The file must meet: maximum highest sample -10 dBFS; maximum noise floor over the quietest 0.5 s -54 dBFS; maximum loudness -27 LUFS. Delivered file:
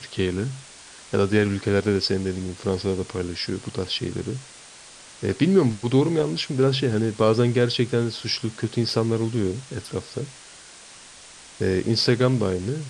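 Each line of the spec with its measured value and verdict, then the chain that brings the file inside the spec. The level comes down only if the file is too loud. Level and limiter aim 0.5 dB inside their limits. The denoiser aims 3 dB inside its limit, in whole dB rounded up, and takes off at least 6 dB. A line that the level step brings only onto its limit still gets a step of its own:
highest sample -6.0 dBFS: fail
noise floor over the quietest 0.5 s -45 dBFS: fail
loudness -23.5 LUFS: fail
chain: denoiser 8 dB, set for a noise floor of -45 dBFS; gain -4 dB; limiter -10.5 dBFS

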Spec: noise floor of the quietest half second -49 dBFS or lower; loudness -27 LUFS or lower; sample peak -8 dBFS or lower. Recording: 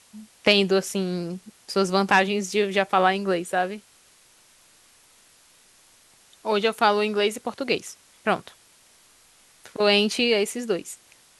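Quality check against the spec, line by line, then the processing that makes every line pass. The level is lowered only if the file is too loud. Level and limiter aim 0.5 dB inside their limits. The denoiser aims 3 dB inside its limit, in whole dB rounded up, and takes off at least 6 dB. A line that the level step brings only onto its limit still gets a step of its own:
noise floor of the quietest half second -57 dBFS: OK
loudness -23.0 LUFS: fail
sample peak -4.0 dBFS: fail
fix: gain -4.5 dB

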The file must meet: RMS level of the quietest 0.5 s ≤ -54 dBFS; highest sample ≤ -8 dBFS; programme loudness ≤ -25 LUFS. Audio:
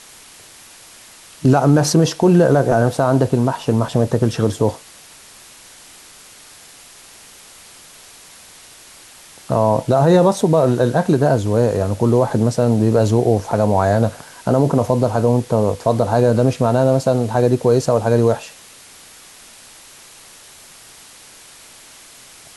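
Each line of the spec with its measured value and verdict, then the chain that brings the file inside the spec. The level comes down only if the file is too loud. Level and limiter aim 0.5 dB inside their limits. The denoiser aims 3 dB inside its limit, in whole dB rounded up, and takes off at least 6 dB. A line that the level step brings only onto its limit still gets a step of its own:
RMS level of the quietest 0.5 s -43 dBFS: fail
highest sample -3.5 dBFS: fail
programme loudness -16.0 LUFS: fail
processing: denoiser 6 dB, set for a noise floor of -43 dBFS; gain -9.5 dB

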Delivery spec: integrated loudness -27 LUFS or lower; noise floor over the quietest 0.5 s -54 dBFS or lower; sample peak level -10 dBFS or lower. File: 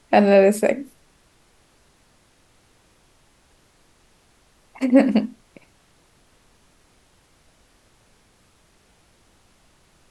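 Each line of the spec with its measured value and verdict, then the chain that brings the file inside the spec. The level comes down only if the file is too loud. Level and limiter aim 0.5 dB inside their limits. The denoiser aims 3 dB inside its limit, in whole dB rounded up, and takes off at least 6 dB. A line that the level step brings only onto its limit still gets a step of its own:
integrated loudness -18.0 LUFS: fail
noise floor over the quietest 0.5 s -59 dBFS: OK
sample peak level -3.0 dBFS: fail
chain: gain -9.5 dB

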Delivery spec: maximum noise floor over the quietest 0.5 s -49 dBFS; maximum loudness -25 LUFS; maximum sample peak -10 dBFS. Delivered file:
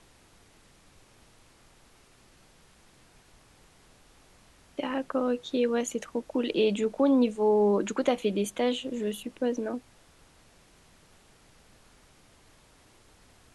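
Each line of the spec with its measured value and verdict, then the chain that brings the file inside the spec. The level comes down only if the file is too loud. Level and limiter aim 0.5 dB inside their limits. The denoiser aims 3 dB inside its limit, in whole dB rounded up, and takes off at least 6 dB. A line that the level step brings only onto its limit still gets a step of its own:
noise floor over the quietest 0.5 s -59 dBFS: OK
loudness -28.0 LUFS: OK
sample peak -12.0 dBFS: OK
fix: none

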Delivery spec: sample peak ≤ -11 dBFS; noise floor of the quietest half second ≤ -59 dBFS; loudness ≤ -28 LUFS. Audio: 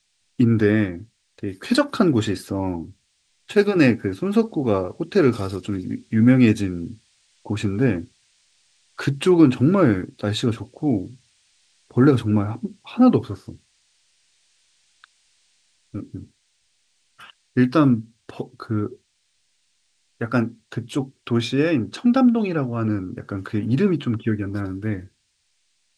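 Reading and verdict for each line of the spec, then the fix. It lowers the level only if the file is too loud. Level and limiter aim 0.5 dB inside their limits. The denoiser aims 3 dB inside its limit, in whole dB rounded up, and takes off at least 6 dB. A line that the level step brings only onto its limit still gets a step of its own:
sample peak -2.5 dBFS: fail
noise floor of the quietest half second -69 dBFS: OK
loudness -21.0 LUFS: fail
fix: gain -7.5 dB; limiter -11.5 dBFS

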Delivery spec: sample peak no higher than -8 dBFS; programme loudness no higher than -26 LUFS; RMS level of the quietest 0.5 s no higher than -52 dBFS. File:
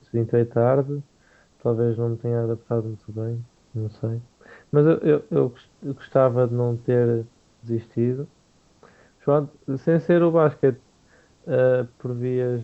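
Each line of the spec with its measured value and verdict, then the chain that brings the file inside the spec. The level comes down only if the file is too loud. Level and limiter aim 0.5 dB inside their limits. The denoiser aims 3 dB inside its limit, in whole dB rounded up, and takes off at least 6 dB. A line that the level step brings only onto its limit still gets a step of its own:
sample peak -5.5 dBFS: fail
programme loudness -23.0 LUFS: fail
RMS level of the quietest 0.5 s -59 dBFS: OK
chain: gain -3.5 dB

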